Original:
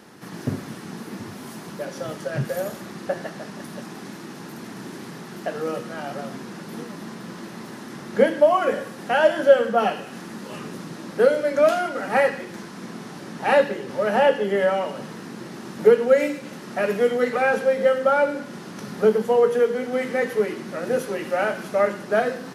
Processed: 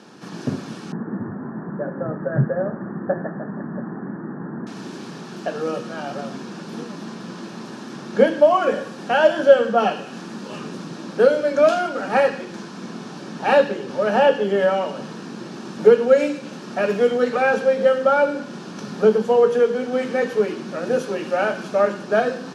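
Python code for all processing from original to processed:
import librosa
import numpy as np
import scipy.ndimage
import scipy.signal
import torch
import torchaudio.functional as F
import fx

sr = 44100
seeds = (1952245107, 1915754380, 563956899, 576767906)

y = fx.chain(x, sr, fx.steep_lowpass(hz=1900.0, slope=96),
    fx.low_shelf(hz=230.0, db=9.5), at=(0.92, 4.67))
y = scipy.signal.sosfilt(scipy.signal.cheby1(2, 1.0, [160.0, 6100.0], 'bandpass', fs=sr, output='sos'), y)
y = fx.notch(y, sr, hz=2000.0, q=5.8)
y = F.gain(torch.from_numpy(y), 3.0).numpy()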